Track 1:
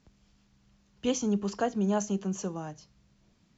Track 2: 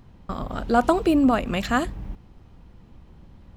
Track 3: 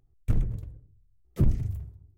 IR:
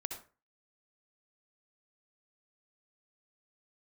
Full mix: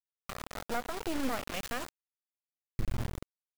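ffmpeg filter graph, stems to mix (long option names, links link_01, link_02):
-filter_complex "[1:a]lowshelf=frequency=330:gain=-5.5,volume=-8.5dB,asplit=2[link_01][link_02];[link_02]volume=-12dB[link_03];[2:a]adelay=2500,volume=1dB,asplit=2[link_04][link_05];[link_05]volume=-9dB[link_06];[3:a]atrim=start_sample=2205[link_07];[link_03][link_06]amix=inputs=2:normalize=0[link_08];[link_08][link_07]afir=irnorm=-1:irlink=0[link_09];[link_01][link_04][link_09]amix=inputs=3:normalize=0,acrusher=bits=3:dc=4:mix=0:aa=0.000001,alimiter=limit=-21.5dB:level=0:latency=1:release=135"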